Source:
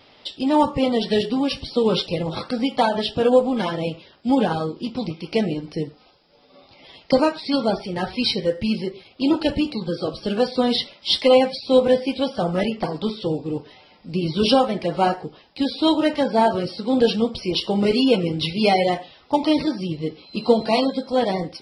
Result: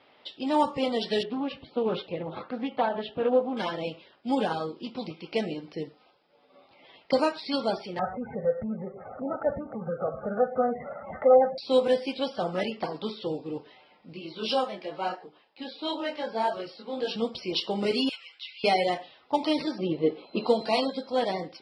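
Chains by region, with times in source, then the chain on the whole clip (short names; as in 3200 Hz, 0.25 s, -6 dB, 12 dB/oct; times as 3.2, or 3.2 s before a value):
1.23–3.57 air absorption 410 m + Doppler distortion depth 0.16 ms
7.99–11.58 steep low-pass 1700 Hz 72 dB/oct + upward compressor, threshold -19 dBFS + comb 1.5 ms, depth 87%
14.13–17.16 HPF 290 Hz 6 dB/oct + detuned doubles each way 14 cents
18.09–18.64 HPF 1400 Hz 24 dB/oct + compressor 1.5:1, threshold -39 dBFS
19.78–20.47 LPF 4100 Hz 24 dB/oct + bell 530 Hz +11.5 dB 2.9 oct + mismatched tape noise reduction decoder only
whole clip: low-pass opened by the level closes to 2500 Hz, open at -13 dBFS; HPF 370 Hz 6 dB/oct; gain -4.5 dB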